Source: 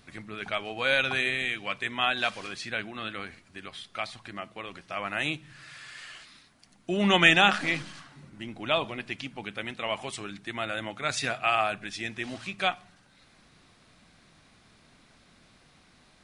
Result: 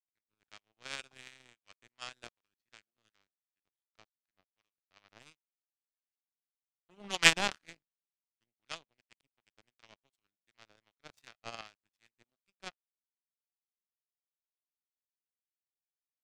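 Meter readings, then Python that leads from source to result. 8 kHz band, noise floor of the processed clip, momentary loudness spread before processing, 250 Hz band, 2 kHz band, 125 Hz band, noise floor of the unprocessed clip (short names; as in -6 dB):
+1.0 dB, under -85 dBFS, 19 LU, -17.5 dB, -10.5 dB, -15.5 dB, -60 dBFS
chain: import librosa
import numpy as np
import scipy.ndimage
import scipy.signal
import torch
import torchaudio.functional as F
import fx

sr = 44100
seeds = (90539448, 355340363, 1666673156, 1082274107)

y = fx.power_curve(x, sr, exponent=3.0)
y = fx.harmonic_tremolo(y, sr, hz=2.7, depth_pct=50, crossover_hz=930.0)
y = F.gain(torch.from_numpy(y), 6.5).numpy()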